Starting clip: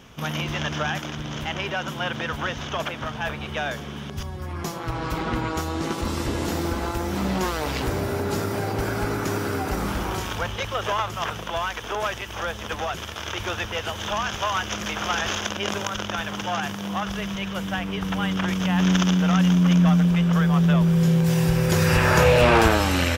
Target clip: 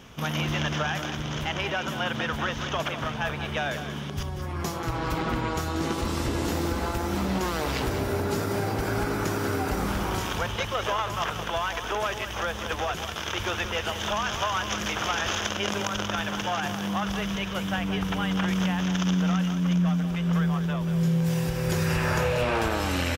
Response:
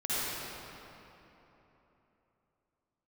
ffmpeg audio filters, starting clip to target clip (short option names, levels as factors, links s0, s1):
-af "acompressor=threshold=0.0708:ratio=6,aecho=1:1:186:0.316"